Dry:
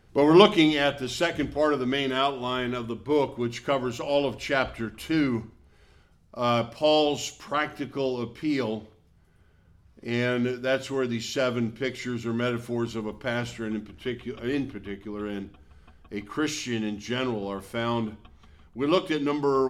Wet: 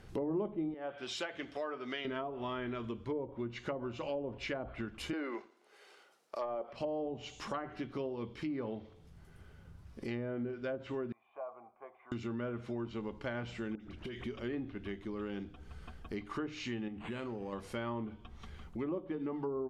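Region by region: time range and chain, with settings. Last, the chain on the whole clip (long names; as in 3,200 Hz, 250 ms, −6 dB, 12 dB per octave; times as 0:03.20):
0:00.74–0:02.05: high-pass filter 850 Hz 6 dB per octave + high-shelf EQ 4,600 Hz −5.5 dB + one half of a high-frequency compander encoder only
0:05.13–0:06.73: high-pass filter 390 Hz 24 dB per octave + leveller curve on the samples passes 1
0:11.12–0:12.12: formant resonators in series a + three-way crossover with the lows and the highs turned down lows −19 dB, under 450 Hz, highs −13 dB, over 2,400 Hz + one half of a high-frequency compander encoder only
0:13.75–0:14.24: high-shelf EQ 8,500 Hz −10 dB + all-pass dispersion highs, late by 51 ms, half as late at 1,400 Hz + downward compressor 12 to 1, threshold −38 dBFS
0:16.88–0:17.53: downward compressor 2 to 1, threshold −35 dBFS + linearly interpolated sample-rate reduction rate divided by 8×
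whole clip: treble cut that deepens with the level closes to 620 Hz, closed at −20 dBFS; downward compressor 3 to 1, threshold −45 dBFS; level +4 dB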